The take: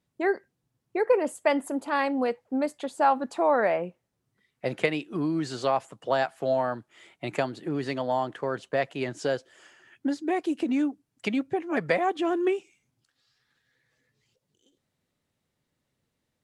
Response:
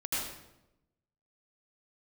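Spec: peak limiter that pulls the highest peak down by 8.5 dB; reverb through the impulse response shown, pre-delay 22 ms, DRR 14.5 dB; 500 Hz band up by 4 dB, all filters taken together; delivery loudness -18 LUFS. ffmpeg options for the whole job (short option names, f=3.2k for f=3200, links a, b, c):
-filter_complex "[0:a]equalizer=f=500:t=o:g=5,alimiter=limit=-16dB:level=0:latency=1,asplit=2[a][b];[1:a]atrim=start_sample=2205,adelay=22[c];[b][c]afir=irnorm=-1:irlink=0,volume=-20.5dB[d];[a][d]amix=inputs=2:normalize=0,volume=9.5dB"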